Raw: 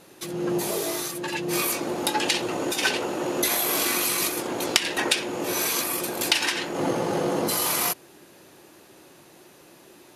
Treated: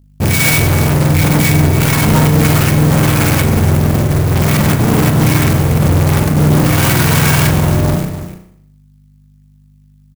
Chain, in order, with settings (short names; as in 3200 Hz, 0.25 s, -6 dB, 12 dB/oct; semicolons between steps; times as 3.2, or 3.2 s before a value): spectrum mirrored in octaves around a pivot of 890 Hz; HPF 110 Hz 12 dB/oct; expander -35 dBFS; tone controls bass +14 dB, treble +13 dB; notches 60/120/180 Hz; negative-ratio compressor -15 dBFS, ratio -0.5; fuzz box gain 36 dB, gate -37 dBFS; hum 50 Hz, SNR 32 dB; echo 0.292 s -12.5 dB; reverb RT60 0.70 s, pre-delay 33 ms, DRR 5 dB; clock jitter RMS 0.061 ms; gain +2 dB